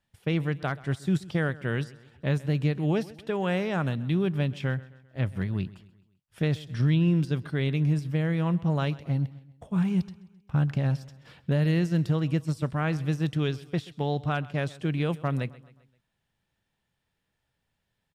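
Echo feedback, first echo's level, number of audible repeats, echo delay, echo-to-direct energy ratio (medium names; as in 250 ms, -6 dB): 48%, -20.0 dB, 3, 131 ms, -19.0 dB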